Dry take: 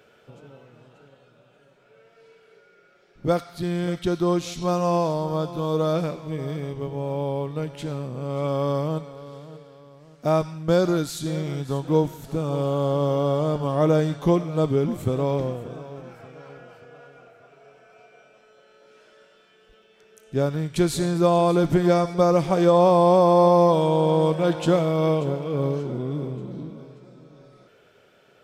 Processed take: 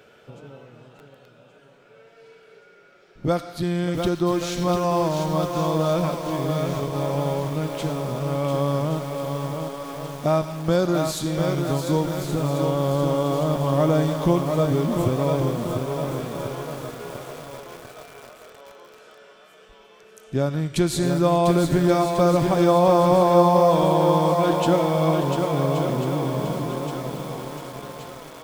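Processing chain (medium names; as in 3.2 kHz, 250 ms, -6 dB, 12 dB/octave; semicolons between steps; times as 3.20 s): thinning echo 1125 ms, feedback 62%, high-pass 570 Hz, level -10.5 dB; in parallel at +1 dB: compression, threshold -26 dBFS, peak gain reduction 13 dB; on the sum: dynamic bell 450 Hz, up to -7 dB, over -36 dBFS, Q 6.2; algorithmic reverb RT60 0.61 s, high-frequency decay 0.45×, pre-delay 70 ms, DRR 19 dB; bit-crushed delay 696 ms, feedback 55%, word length 6-bit, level -5 dB; trim -2.5 dB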